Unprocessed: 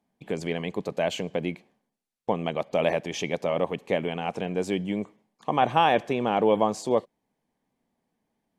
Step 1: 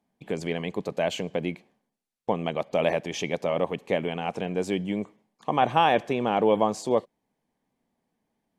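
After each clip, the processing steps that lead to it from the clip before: no audible change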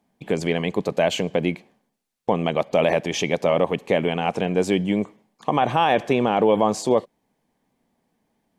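peak limiter -14.5 dBFS, peak gain reduction 7 dB; trim +7 dB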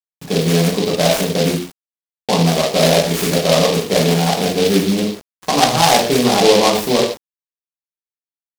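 reverberation, pre-delay 3 ms, DRR -6 dB; word length cut 6-bit, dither none; delay time shaken by noise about 3.5 kHz, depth 0.11 ms; trim -1 dB

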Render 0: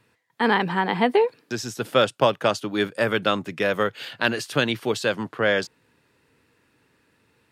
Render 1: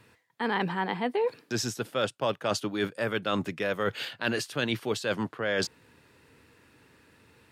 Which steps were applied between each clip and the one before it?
peaking EQ 79 Hz +5 dB 0.41 oct; reverse; compression 5:1, threshold -31 dBFS, peak gain reduction 16.5 dB; reverse; trim +4.5 dB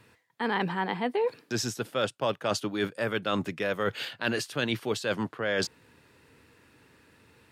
no audible change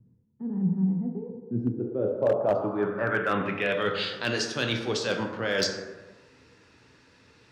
reverberation RT60 1.3 s, pre-delay 7 ms, DRR 2.5 dB; low-pass sweep 190 Hz -> 5.7 kHz, 1.41–4.25 s; hard clipper -15 dBFS, distortion -26 dB; trim -1 dB

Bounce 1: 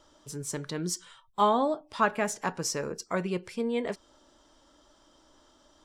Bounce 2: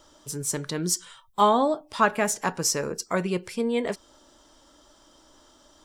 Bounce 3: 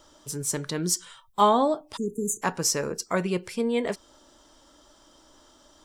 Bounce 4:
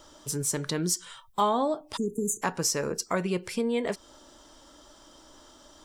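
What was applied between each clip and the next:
treble shelf 7.8 kHz +9 dB; trim +4 dB
spectral selection erased 1.97–2.42 s, 460–6100 Hz
compression 2:1, threshold -31 dBFS, peak gain reduction 9 dB; trim +3 dB

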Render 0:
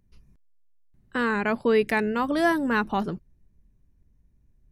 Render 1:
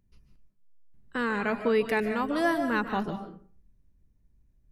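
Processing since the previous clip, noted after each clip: algorithmic reverb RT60 0.45 s, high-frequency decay 0.65×, pre-delay 105 ms, DRR 7 dB; trim -4 dB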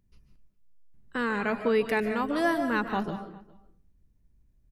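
echo from a far wall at 70 m, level -23 dB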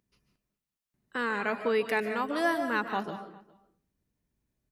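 high-pass 390 Hz 6 dB/octave

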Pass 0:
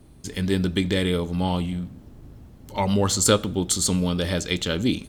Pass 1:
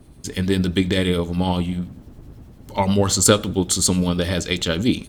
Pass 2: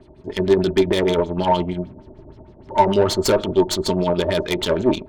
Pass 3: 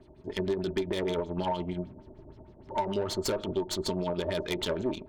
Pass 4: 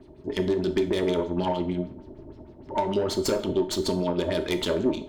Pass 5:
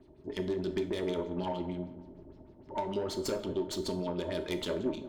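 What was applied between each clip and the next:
harmonic tremolo 10 Hz, depth 50%, crossover 2 kHz; trim +5.5 dB
LFO low-pass sine 6.5 Hz 560–5300 Hz; valve stage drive 17 dB, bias 0.65; small resonant body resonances 380/620/900 Hz, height 15 dB, ringing for 70 ms
compression, threshold -19 dBFS, peak gain reduction 10 dB; trim -7.5 dB
peaking EQ 290 Hz +5.5 dB 0.76 oct; on a send at -8.5 dB: reverberation, pre-delay 6 ms; on the sum: trim +3 dB
filtered feedback delay 180 ms, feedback 49%, low-pass 1.3 kHz, level -13 dB; trim -8.5 dB

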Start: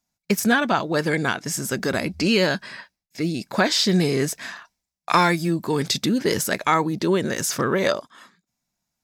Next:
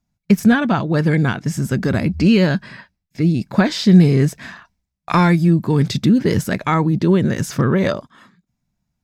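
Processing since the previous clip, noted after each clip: tone controls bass +15 dB, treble -7 dB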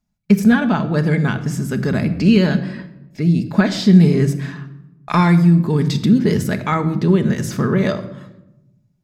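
simulated room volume 3500 m³, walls furnished, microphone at 1.4 m; trim -2 dB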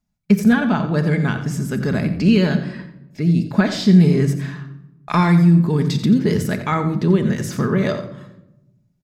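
delay 88 ms -12.5 dB; trim -1.5 dB

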